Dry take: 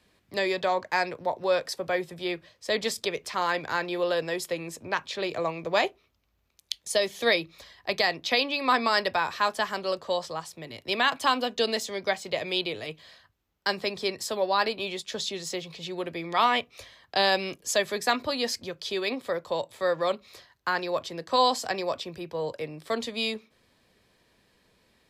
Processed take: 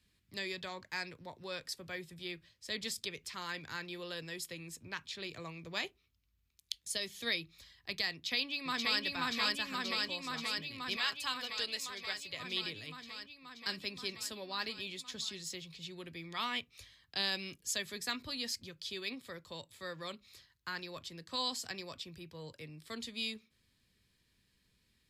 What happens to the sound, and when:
8.12–9.02 s: echo throw 530 ms, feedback 80%, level 0 dB
10.96–12.40 s: peaking EQ 230 Hz -11.5 dB 1.1 oct
whole clip: amplifier tone stack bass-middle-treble 6-0-2; band-stop 6 kHz, Q 26; trim +8.5 dB

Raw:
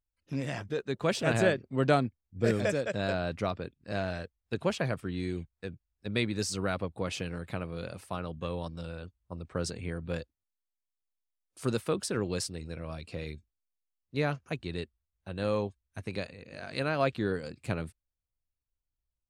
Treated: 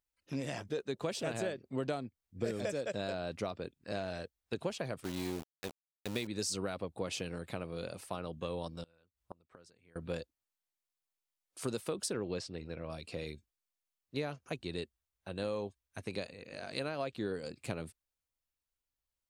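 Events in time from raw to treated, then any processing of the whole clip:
5.04–6.27 s: small samples zeroed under -36.5 dBFS
8.83–9.96 s: inverted gate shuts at -33 dBFS, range -27 dB
12.13–12.90 s: low-pass 3.3 kHz
whole clip: bass shelf 210 Hz -11.5 dB; compression 6:1, threshold -33 dBFS; dynamic bell 1.6 kHz, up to -7 dB, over -54 dBFS, Q 0.71; trim +2.5 dB

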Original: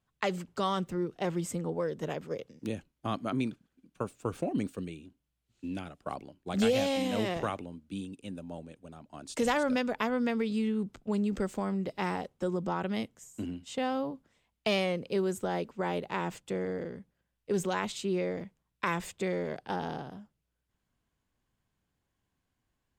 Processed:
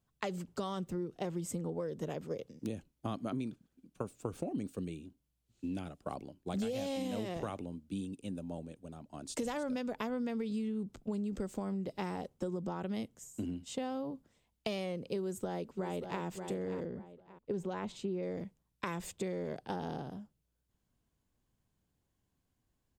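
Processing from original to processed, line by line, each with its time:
15.19–16.22 s: echo throw 580 ms, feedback 30%, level -11 dB
16.85–18.23 s: low-pass 1.8 kHz 6 dB/octave
whole clip: peaking EQ 1.8 kHz -7 dB 2.4 oct; compression, threshold -35 dBFS; trim +1.5 dB

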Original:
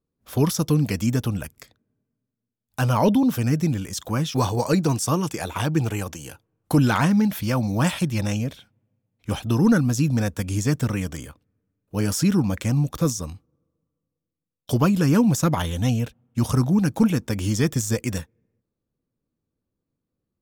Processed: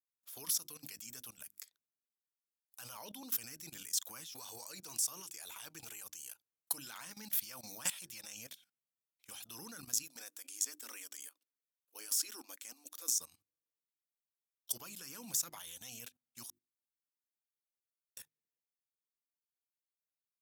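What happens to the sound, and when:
10.03–13.18 s: brick-wall FIR high-pass 230 Hz
16.50–18.17 s: room tone
whole clip: differentiator; hum notches 50/100/150/200/250/300/350 Hz; level held to a coarse grid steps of 17 dB; trim +2 dB

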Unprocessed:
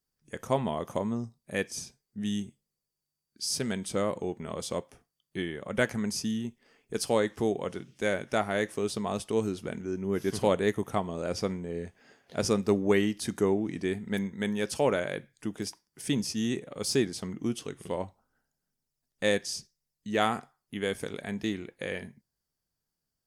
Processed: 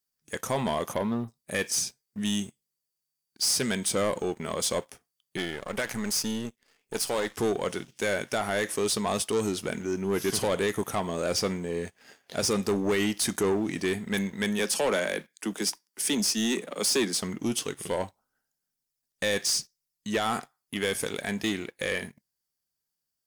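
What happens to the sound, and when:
0.93–1.28 s: spectral selection erased 4.2–10 kHz
5.37–7.35 s: partial rectifier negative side -12 dB
14.59–17.22 s: steep high-pass 160 Hz 96 dB/octave
whole clip: tilt EQ +2 dB/octave; peak limiter -19 dBFS; waveshaping leveller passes 2

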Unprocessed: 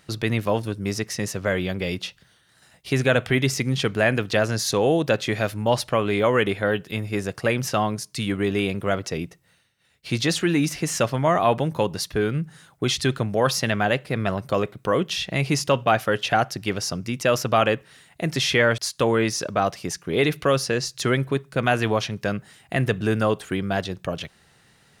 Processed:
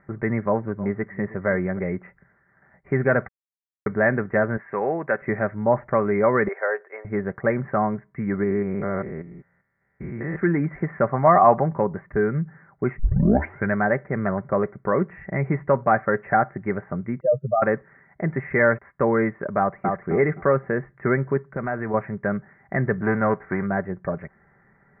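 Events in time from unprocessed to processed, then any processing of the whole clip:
0.43–1.79 s: delay 314 ms -17 dB
3.28–3.86 s: mute
4.57–5.22 s: tilt EQ +4 dB/octave
6.48–7.05 s: steep high-pass 440 Hz
8.43–10.36 s: spectrogram pixelated in time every 200 ms
11.09–11.73 s: small resonant body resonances 740/1100 Hz, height 10 dB, ringing for 25 ms
12.99 s: tape start 0.76 s
17.20–17.62 s: spectral contrast enhancement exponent 3.8
19.58–20.06 s: echo throw 260 ms, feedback 25%, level -3 dB
21.44–21.94 s: compression 2:1, threshold -27 dBFS
23.01–23.65 s: formants flattened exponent 0.6
whole clip: steep low-pass 2.1 kHz 96 dB/octave; comb 5.1 ms, depth 38%

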